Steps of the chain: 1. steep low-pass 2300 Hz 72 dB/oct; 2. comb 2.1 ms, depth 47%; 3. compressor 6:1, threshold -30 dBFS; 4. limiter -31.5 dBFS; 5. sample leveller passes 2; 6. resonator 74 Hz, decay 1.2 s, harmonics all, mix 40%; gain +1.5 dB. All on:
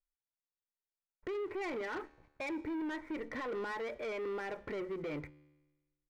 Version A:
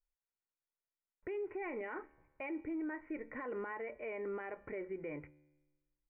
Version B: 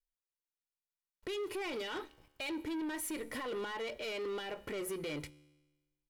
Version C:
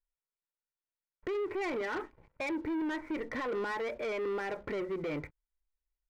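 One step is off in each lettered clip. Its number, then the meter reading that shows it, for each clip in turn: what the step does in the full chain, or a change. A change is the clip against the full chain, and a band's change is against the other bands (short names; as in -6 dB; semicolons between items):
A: 5, loudness change -3.0 LU; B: 1, 4 kHz band +10.5 dB; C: 6, loudness change +4.0 LU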